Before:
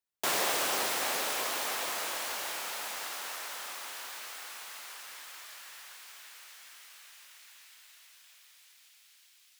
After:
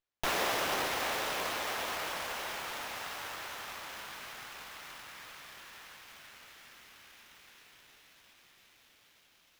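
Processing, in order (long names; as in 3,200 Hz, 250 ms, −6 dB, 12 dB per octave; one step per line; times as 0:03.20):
parametric band 4,500 Hz −5 dB 0.35 octaves
windowed peak hold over 5 samples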